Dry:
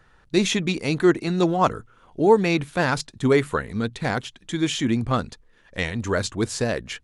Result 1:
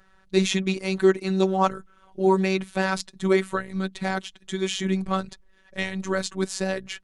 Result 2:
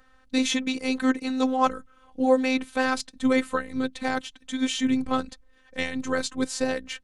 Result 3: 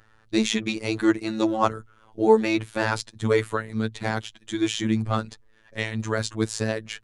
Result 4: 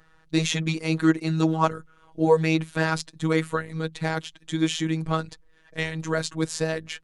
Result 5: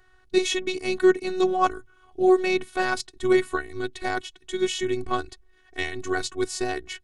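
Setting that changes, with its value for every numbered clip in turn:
phases set to zero, frequency: 190, 260, 110, 160, 370 Hertz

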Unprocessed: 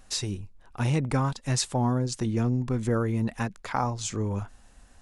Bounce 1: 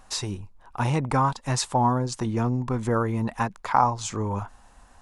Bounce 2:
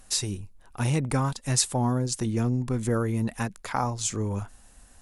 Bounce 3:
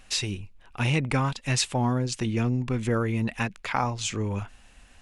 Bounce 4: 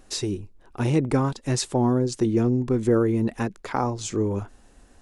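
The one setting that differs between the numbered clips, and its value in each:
parametric band, centre frequency: 960, 11,000, 2,600, 360 Hertz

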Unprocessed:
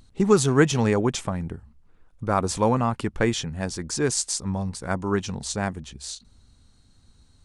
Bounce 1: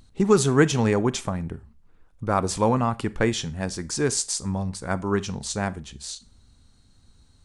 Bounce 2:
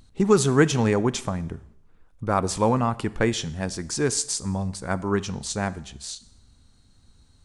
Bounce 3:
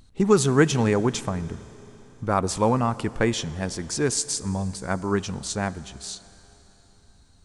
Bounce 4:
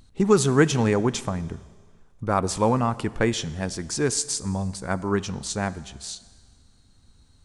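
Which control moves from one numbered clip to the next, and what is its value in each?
four-comb reverb, RT60: 0.3, 0.76, 4, 1.7 seconds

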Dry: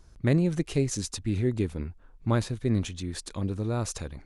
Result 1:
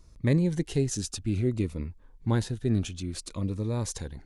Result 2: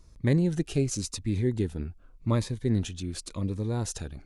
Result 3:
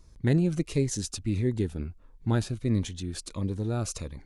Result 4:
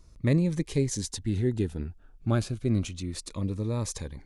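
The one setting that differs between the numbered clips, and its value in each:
phaser whose notches keep moving one way, speed: 0.59, 0.89, 1.5, 0.31 Hertz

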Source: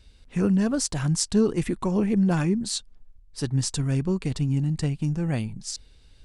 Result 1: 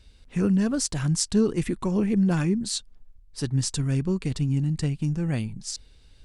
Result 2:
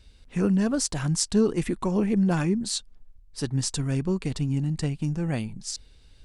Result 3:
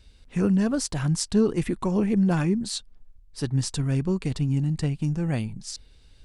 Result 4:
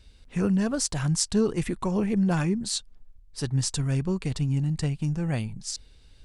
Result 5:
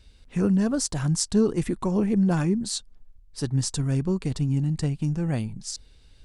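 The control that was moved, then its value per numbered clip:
dynamic equaliser, frequency: 760, 100, 7,100, 280, 2,500 Hertz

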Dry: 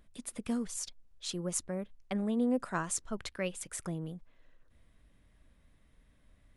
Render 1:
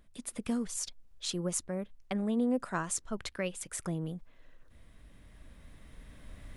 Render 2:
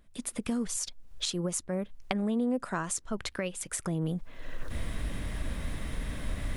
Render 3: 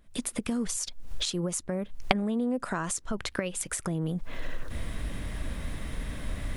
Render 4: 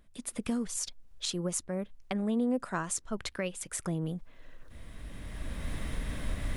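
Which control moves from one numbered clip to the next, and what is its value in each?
camcorder AGC, rising by: 5.2, 36, 91, 14 dB per second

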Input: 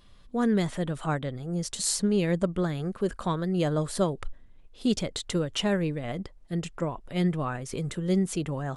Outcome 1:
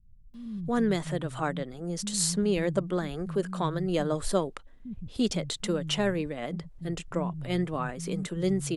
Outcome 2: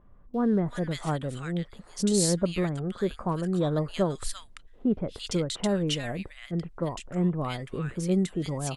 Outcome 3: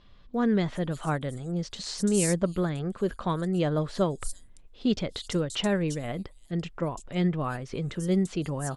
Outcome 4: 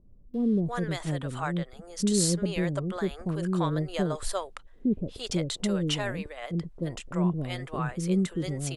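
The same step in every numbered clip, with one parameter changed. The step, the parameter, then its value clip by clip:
multiband delay without the direct sound, split: 160, 1,500, 5,500, 520 Hertz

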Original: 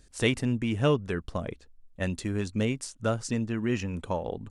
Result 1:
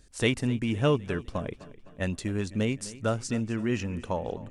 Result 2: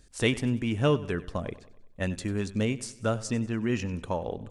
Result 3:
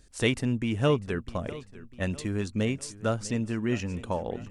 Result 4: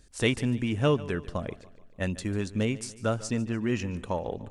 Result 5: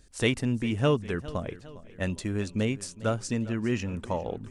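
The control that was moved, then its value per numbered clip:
feedback echo with a swinging delay time, delay time: 255, 95, 650, 146, 406 milliseconds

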